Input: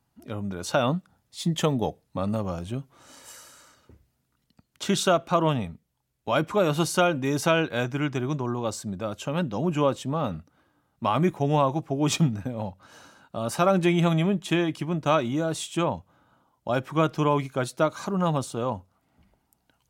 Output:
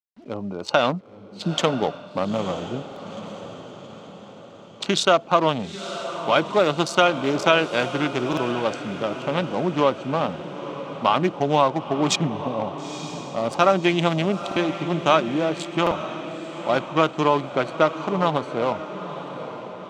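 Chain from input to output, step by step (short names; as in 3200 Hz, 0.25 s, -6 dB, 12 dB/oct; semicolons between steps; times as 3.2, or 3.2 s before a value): Wiener smoothing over 25 samples; HPF 100 Hz 12 dB/oct; RIAA curve recording; notch 1700 Hz, Q 23; in parallel at -1 dB: compressor, threshold -29 dBFS, peak gain reduction 12.5 dB; on the sum: bit-crush 10-bit; air absorption 150 m; on a send: diffused feedback echo 0.915 s, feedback 51%, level -11 dB; on the sum: stuck buffer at 2.87/8.28/14.47/15.82, samples 2048, times 1; gain +4.5 dB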